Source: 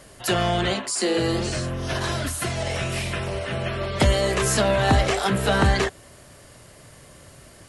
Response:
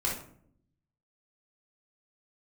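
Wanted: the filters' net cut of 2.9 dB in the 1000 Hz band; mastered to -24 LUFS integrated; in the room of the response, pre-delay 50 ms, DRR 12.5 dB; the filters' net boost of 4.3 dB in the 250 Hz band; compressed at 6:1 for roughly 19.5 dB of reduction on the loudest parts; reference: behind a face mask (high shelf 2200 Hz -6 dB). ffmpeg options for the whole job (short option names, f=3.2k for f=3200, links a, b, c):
-filter_complex "[0:a]equalizer=f=250:t=o:g=6.5,equalizer=f=1k:t=o:g=-3.5,acompressor=threshold=-34dB:ratio=6,asplit=2[a][b];[1:a]atrim=start_sample=2205,adelay=50[c];[b][c]afir=irnorm=-1:irlink=0,volume=-19.5dB[d];[a][d]amix=inputs=2:normalize=0,highshelf=f=2.2k:g=-6,volume=13.5dB"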